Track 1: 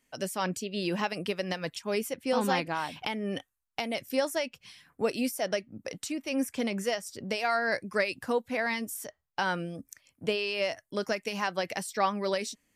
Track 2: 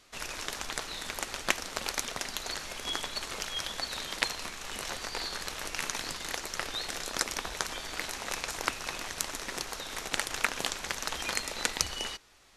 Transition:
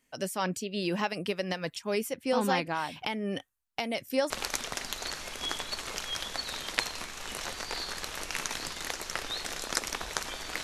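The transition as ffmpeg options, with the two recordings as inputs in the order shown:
ffmpeg -i cue0.wav -i cue1.wav -filter_complex "[0:a]apad=whole_dur=10.63,atrim=end=10.63,atrim=end=4.302[link_01];[1:a]atrim=start=1.738:end=8.07[link_02];[link_01][link_02]acrossfade=duration=0.004:curve1=hsin:curve2=hsin" out.wav

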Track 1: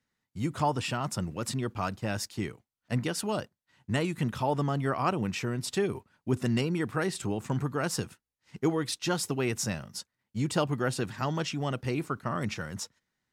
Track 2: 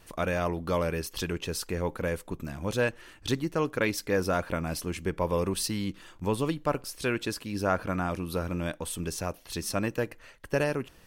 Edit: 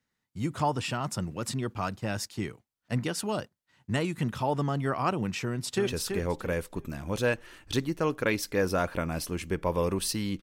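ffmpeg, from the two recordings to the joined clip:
ffmpeg -i cue0.wav -i cue1.wav -filter_complex "[0:a]apad=whole_dur=10.42,atrim=end=10.42,atrim=end=5.872[link_01];[1:a]atrim=start=1.418:end=5.97[link_02];[link_01][link_02]acrossfade=duration=0.004:curve1=hsin:curve2=hsin,asplit=2[link_03][link_04];[link_04]afade=type=in:start_time=5.43:duration=0.01,afade=type=out:start_time=5.87:duration=0.01,aecho=0:1:330|660|990:0.501187|0.125297|0.0313242[link_05];[link_03][link_05]amix=inputs=2:normalize=0" out.wav

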